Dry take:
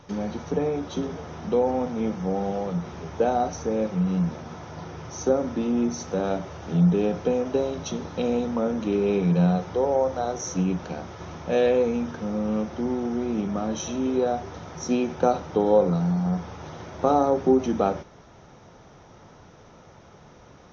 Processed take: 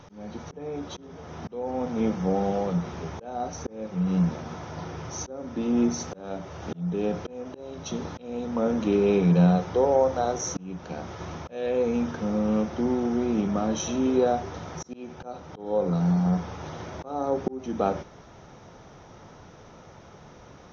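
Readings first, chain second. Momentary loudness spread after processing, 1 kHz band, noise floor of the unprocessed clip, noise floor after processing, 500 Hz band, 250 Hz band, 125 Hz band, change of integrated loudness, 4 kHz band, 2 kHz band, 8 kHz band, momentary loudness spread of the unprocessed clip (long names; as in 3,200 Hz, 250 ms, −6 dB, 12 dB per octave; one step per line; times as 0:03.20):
16 LU, −3.0 dB, −50 dBFS, −49 dBFS, −3.5 dB, −1.0 dB, −1.0 dB, −2.0 dB, −1.0 dB, −2.0 dB, can't be measured, 13 LU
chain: volume swells 545 ms
level +1.5 dB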